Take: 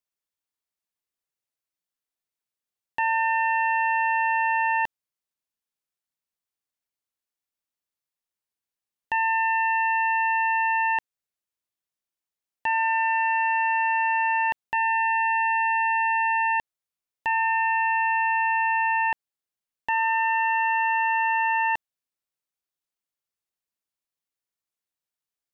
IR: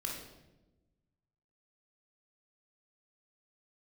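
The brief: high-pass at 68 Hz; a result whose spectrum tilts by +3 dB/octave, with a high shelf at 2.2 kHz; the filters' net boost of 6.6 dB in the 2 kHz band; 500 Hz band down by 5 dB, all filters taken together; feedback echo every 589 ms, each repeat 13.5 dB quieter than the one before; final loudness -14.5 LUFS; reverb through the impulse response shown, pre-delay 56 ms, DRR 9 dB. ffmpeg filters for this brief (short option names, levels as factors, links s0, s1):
-filter_complex "[0:a]highpass=68,equalizer=f=500:t=o:g=-8,equalizer=f=2000:t=o:g=4.5,highshelf=f=2200:g=7,aecho=1:1:589|1178:0.211|0.0444,asplit=2[s0][s1];[1:a]atrim=start_sample=2205,adelay=56[s2];[s1][s2]afir=irnorm=-1:irlink=0,volume=0.316[s3];[s0][s3]amix=inputs=2:normalize=0,volume=1.33"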